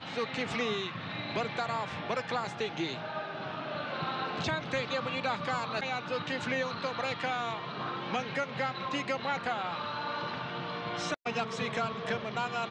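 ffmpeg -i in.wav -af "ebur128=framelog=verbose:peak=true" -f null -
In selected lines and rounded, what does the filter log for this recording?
Integrated loudness:
  I:         -33.8 LUFS
  Threshold: -43.8 LUFS
Loudness range:
  LRA:         1.8 LU
  Threshold: -53.8 LUFS
  LRA low:   -34.6 LUFS
  LRA high:  -32.9 LUFS
True peak:
  Peak:      -19.7 dBFS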